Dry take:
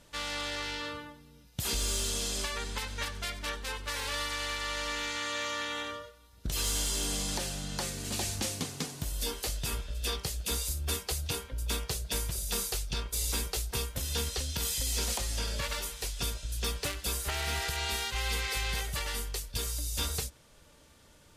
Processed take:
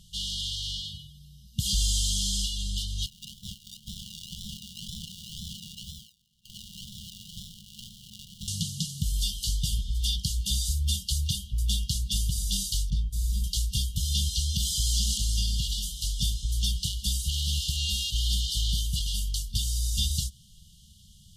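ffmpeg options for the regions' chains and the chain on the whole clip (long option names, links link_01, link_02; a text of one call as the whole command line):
ffmpeg -i in.wav -filter_complex "[0:a]asettb=1/sr,asplit=3[link_01][link_02][link_03];[link_01]atrim=end=3.064[link_04];[link_02]atrim=start=3.06:end=8.48,asetpts=PTS-STARTPTS,afade=type=in:duration=0.004:curve=qsin,afade=type=out:start_time=5.416:duration=0.004:curve=qsin,lowpass=frequency=3000:width_type=q:width=1.6,acrusher=samples=34:mix=1:aa=0.000001:lfo=1:lforange=20.4:lforate=2,aeval=exprs='val(0)*sin(2*PI*1100*n/s)':channel_layout=same[link_05];[link_03]atrim=start=8.476[link_06];[link_04][link_05]acrossfade=duration=0.004:curve1=hsin:curve2=qsin[link_07];[link_07][link_06]acrossfade=duration=0.004:curve1=qsin:curve2=hsin,asettb=1/sr,asplit=3[link_08][link_09][link_10];[link_08]atrim=end=12.904[link_11];[link_09]atrim=start=12.9:end=13.44,asetpts=PTS-STARTPTS,afade=type=in:duration=0.004:curve=qsin,afade=type=out:start_time=0.536:duration=0.004:curve=qsin,highshelf=frequency=1700:width_type=q:width=1.5:gain=-12.5,asplit=2[link_12][link_13];[link_13]adelay=21,volume=-11dB[link_14];[link_12][link_14]amix=inputs=2:normalize=0,atrim=end_sample=23814[link_15];[link_10]atrim=start=13.436[link_16];[link_11][link_15]acrossfade=duration=0.004:curve1=hsin:curve2=qsin[link_17];[link_17][link_16]acrossfade=duration=0.004:curve1=qsin:curve2=hsin,highshelf=frequency=5200:gain=-4.5,acrossover=split=9700[link_18][link_19];[link_19]acompressor=threshold=-52dB:ratio=4:attack=1:release=60[link_20];[link_18][link_20]amix=inputs=2:normalize=0,afftfilt=real='re*(1-between(b*sr/4096,220,2800))':imag='im*(1-between(b*sr/4096,220,2800))':win_size=4096:overlap=0.75,volume=8dB" out.wav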